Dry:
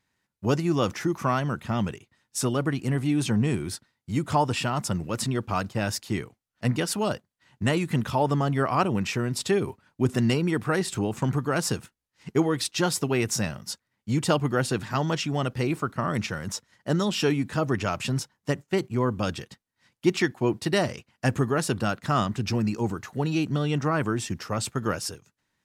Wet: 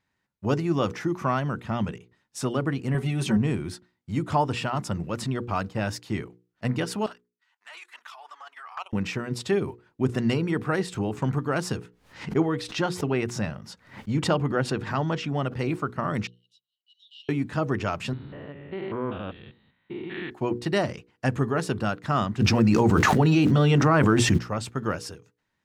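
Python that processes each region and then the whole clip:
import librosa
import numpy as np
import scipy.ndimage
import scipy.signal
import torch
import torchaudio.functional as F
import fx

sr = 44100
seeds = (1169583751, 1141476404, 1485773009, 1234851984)

y = fx.chain(x, sr, fx.high_shelf(hz=11000.0, db=7.5),
    fx.comb(ms=5.3, depth=0.84), at=(2.94, 3.37))
y = fx.chain(y, sr, fx.highpass(hz=960.0, slope=24),
    fx.level_steps(step_db=13),
    fx.env_flanger(rest_ms=10.6, full_db=-27.5), at=(7.06, 8.93))
y = fx.chain(y, sr, fx.high_shelf(hz=4800.0, db=-7.5),
    fx.pre_swell(db_per_s=120.0), at=(11.77, 15.59))
y = fx.chain(y, sr, fx.cheby_ripple_highpass(hz=2800.0, ripple_db=9),
    fx.air_absorb(metres=370.0), at=(16.27, 17.29))
y = fx.chain(y, sr, fx.spec_steps(hold_ms=200),
    fx.steep_lowpass(hz=4000.0, slope=96),
    fx.dynamic_eq(hz=130.0, q=0.83, threshold_db=-41.0, ratio=4.0, max_db=-8), at=(18.13, 20.31))
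y = fx.dmg_crackle(y, sr, seeds[0], per_s=470.0, level_db=-46.0, at=(22.39, 24.37), fade=0.02)
y = fx.hum_notches(y, sr, base_hz=60, count=9, at=(22.39, 24.37), fade=0.02)
y = fx.env_flatten(y, sr, amount_pct=100, at=(22.39, 24.37), fade=0.02)
y = fx.high_shelf(y, sr, hz=5500.0, db=-11.5)
y = fx.hum_notches(y, sr, base_hz=60, count=8)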